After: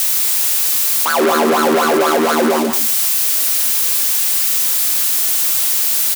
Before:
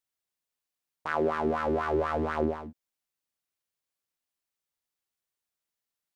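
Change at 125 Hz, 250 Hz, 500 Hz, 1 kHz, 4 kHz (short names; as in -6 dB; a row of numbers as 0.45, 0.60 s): +2.0, +15.0, +14.0, +16.0, +34.0 dB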